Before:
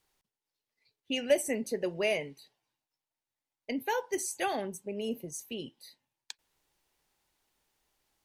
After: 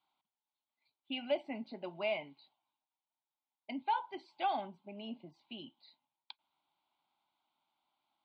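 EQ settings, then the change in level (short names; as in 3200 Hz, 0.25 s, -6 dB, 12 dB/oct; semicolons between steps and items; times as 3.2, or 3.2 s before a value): air absorption 200 m; speaker cabinet 370–4300 Hz, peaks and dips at 400 Hz -7 dB, 1200 Hz -6 dB, 1700 Hz -6 dB, 2700 Hz -9 dB; fixed phaser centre 1800 Hz, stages 6; +5.0 dB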